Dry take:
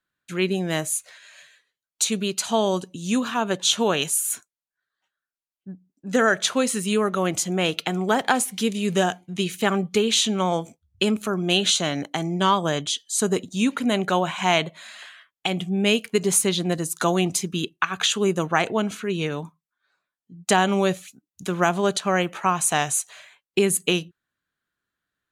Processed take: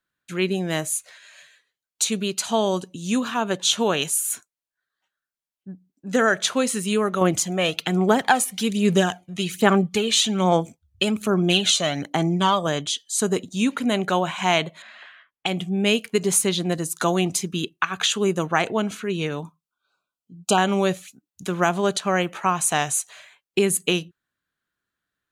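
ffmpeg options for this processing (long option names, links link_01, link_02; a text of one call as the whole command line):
ffmpeg -i in.wav -filter_complex "[0:a]asettb=1/sr,asplit=3[link_01][link_02][link_03];[link_01]atrim=end=7.214[link_04];[link_02]atrim=start=7.21:end=12.67,asetpts=PTS-STARTPTS,afade=type=in:duration=0.004:curve=qsin,afade=type=out:start_time=5.456:duration=0.004:curve=qsin,aphaser=in_gain=1:out_gain=1:delay=1.7:decay=0.47:speed=1.2:type=sinusoidal[link_05];[link_03]atrim=start=12.666[link_06];[link_04][link_05]acrossfade=duration=0.004:curve1=hsin:curve2=qsin[link_07];[link_07][link_06]acrossfade=duration=0.004:curve1=qsin:curve2=hsin,asettb=1/sr,asplit=3[link_08][link_09][link_10];[link_08]atrim=end=14.824[link_11];[link_09]atrim=start=14.82:end=15.46,asetpts=PTS-STARTPTS,afade=type=in:duration=0.004:curve=qsin,afade=type=out:start_time=0.636:duration=0.004:curve=qsin,lowpass=2600[link_12];[link_10]atrim=start=15.456[link_13];[link_11][link_12]acrossfade=duration=0.004:curve1=hsin:curve2=qsin[link_14];[link_14][link_13]acrossfade=duration=0.004:curve1=qsin:curve2=hsin,asettb=1/sr,asplit=3[link_15][link_16][link_17];[link_15]atrim=end=19.394[link_18];[link_16]atrim=start=19.39:end=20.58,asetpts=PTS-STARTPTS,afade=type=in:duration=0.004:curve=qsin,afade=type=out:start_time=1.186:duration=0.004:curve=qsin,asuperstop=centerf=1900:order=12:qfactor=2.3[link_19];[link_17]atrim=start=20.576[link_20];[link_18][link_19]acrossfade=duration=0.004:curve1=hsin:curve2=qsin[link_21];[link_21][link_20]acrossfade=duration=0.004:curve1=qsin:curve2=hsin" out.wav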